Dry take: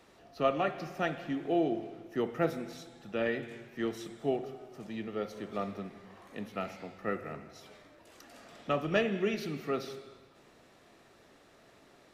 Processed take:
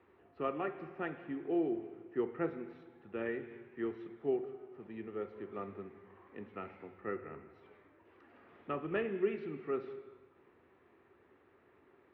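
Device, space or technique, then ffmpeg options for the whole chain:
bass cabinet: -af "highpass=65,equalizer=frequency=86:width_type=q:width=4:gain=8,equalizer=frequency=130:width_type=q:width=4:gain=-4,equalizer=frequency=190:width_type=q:width=4:gain=-4,equalizer=frequency=380:width_type=q:width=4:gain=8,equalizer=frequency=640:width_type=q:width=4:gain=-8,equalizer=frequency=1000:width_type=q:width=4:gain=3,lowpass=frequency=2400:width=0.5412,lowpass=frequency=2400:width=1.3066,volume=-6.5dB"

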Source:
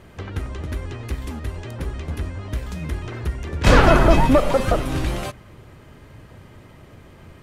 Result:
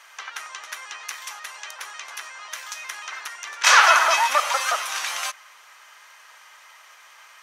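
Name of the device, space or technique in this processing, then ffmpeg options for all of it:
headphones lying on a table: -filter_complex "[0:a]highpass=frequency=1000:width=0.5412,highpass=frequency=1000:width=1.3066,equalizer=frequency=6000:width_type=o:width=0.34:gain=9.5,asettb=1/sr,asplit=3[link_01][link_02][link_03];[link_01]atrim=end=1.234[link_04];[link_02]atrim=start=1.23:end=1.81,asetpts=PTS-STARTPTS,afade=type=in:duration=0.004:curve=qsin,afade=type=out:start_time=0.576:duration=0.004:curve=qsin,highpass=frequency=340:width=0.5412,highpass=frequency=340:width=1.3066[link_05];[link_03]atrim=start=1.806[link_06];[link_04][link_05]acrossfade=duration=0.004:curve1=hsin:curve2=qsin[link_07];[link_07][link_06]acrossfade=duration=0.004:curve1=qsin:curve2=hsin,volume=6dB"

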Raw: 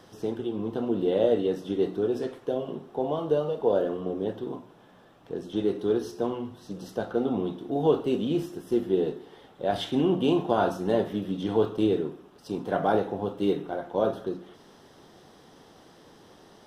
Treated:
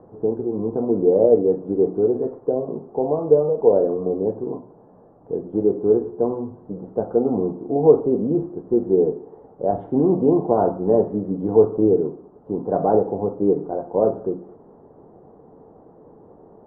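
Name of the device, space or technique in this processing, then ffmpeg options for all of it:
under water: -af "lowpass=frequency=910:width=0.5412,lowpass=frequency=910:width=1.3066,equalizer=frequency=450:width_type=o:width=0.2:gain=6,volume=5.5dB"

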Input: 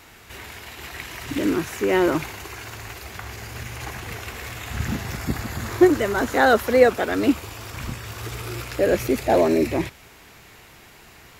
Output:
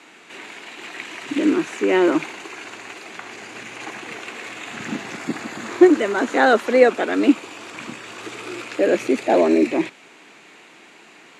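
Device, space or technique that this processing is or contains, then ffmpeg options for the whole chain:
television speaker: -af "highpass=frequency=200:width=0.5412,highpass=frequency=200:width=1.3066,equalizer=frequency=310:width_type=q:width=4:gain=5,equalizer=frequency=2500:width_type=q:width=4:gain=4,equalizer=frequency=5300:width_type=q:width=4:gain=-7,lowpass=frequency=8300:width=0.5412,lowpass=frequency=8300:width=1.3066,volume=1dB"

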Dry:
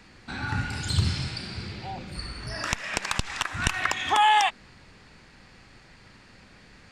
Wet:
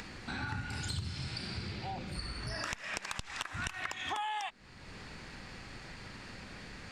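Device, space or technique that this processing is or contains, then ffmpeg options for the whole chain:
upward and downward compression: -af "acompressor=mode=upward:threshold=-36dB:ratio=2.5,acompressor=threshold=-32dB:ratio=8,volume=-2.5dB"

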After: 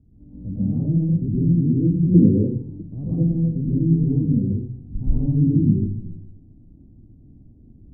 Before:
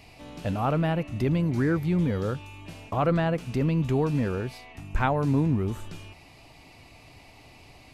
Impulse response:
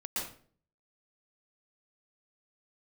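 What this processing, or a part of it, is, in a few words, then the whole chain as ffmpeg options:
next room: -filter_complex "[0:a]lowpass=frequency=280:width=0.5412,lowpass=frequency=280:width=1.3066[link_01];[1:a]atrim=start_sample=2205[link_02];[link_01][link_02]afir=irnorm=-1:irlink=0,asettb=1/sr,asplit=3[link_03][link_04][link_05];[link_03]atrim=end=2.144[link_06];[link_04]atrim=start=2.14:end=2.82,asetpts=PTS-STARTPTS,afade=type=in:duration=0.004:curve=qsin,afade=type=out:start_time=0.676:duration=0.004:curve=qsin,equalizer=frequency=390:width=0.94:gain=13[link_07];[link_05]atrim=start=2.816[link_08];[link_06][link_07]acrossfade=duration=0.004:curve1=hsin:curve2=qsin[link_09];[link_09][link_08]acrossfade=duration=0.004:curve1=qsin:curve2=hsin,volume=4.5dB"

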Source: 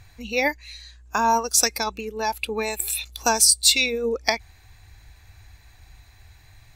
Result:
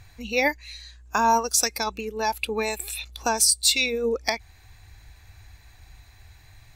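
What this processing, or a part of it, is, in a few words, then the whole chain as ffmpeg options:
clipper into limiter: -filter_complex "[0:a]asoftclip=type=hard:threshold=-5dB,alimiter=limit=-8.5dB:level=0:latency=1:release=331,asettb=1/sr,asplit=3[link_01][link_02][link_03];[link_01]atrim=end=2.784[link_04];[link_02]atrim=start=2.78:end=3.38,asetpts=PTS-STARTPTS,afade=type=in:duration=0.004:curve=qsin,afade=type=out:start_time=0.596:duration=0.004:curve=qsin,aemphasis=mode=reproduction:type=cd[link_05];[link_03]atrim=start=3.376[link_06];[link_04][link_05]acrossfade=duration=0.004:curve1=hsin:curve2=qsin[link_07];[link_07][link_06]acrossfade=duration=0.004:curve1=qsin:curve2=hsin"

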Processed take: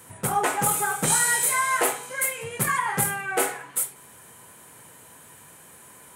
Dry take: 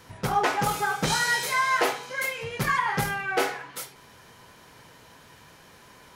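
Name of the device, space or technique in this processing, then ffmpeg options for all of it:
budget condenser microphone: -af "highpass=85,highshelf=frequency=6700:width_type=q:width=3:gain=9.5"

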